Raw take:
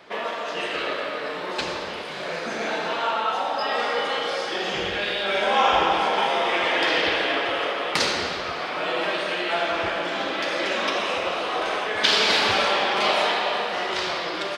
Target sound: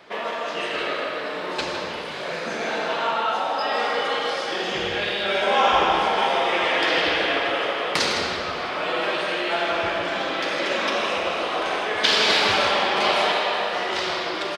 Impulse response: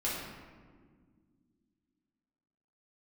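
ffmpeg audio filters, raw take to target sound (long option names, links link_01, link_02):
-filter_complex "[0:a]asplit=2[link_01][link_02];[link_02]adelay=157.4,volume=-7dB,highshelf=frequency=4000:gain=-3.54[link_03];[link_01][link_03]amix=inputs=2:normalize=0,asplit=2[link_04][link_05];[1:a]atrim=start_sample=2205,adelay=40[link_06];[link_05][link_06]afir=irnorm=-1:irlink=0,volume=-18.5dB[link_07];[link_04][link_07]amix=inputs=2:normalize=0"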